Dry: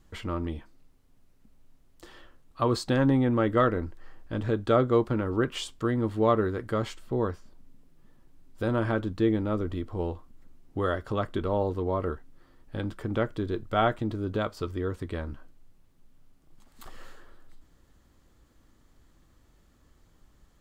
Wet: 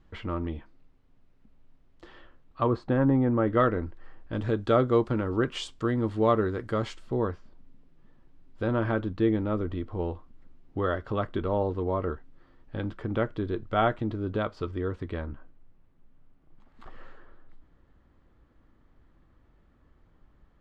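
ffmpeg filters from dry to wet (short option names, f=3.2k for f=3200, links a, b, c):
-af "asetnsamples=n=441:p=0,asendcmd='2.67 lowpass f 1500;3.48 lowpass f 3300;4.33 lowpass f 6800;7.17 lowpass f 3500;15.26 lowpass f 2200',lowpass=3.2k"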